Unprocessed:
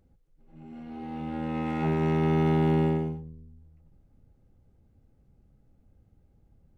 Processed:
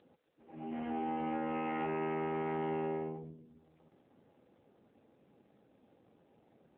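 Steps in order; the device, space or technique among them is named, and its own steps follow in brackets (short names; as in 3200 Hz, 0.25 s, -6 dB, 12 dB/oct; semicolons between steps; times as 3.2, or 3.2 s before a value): voicemail (BPF 380–3100 Hz; compressor 8:1, threshold -44 dBFS, peak gain reduction 16.5 dB; gain +11.5 dB; AMR-NB 7.4 kbps 8000 Hz)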